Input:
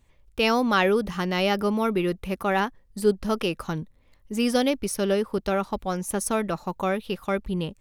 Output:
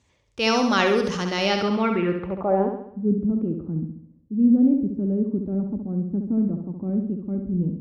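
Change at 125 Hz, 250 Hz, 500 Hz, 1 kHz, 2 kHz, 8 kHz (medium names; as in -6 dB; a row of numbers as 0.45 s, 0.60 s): +4.5 dB, +5.5 dB, -1.0 dB, -1.0 dB, -0.5 dB, no reading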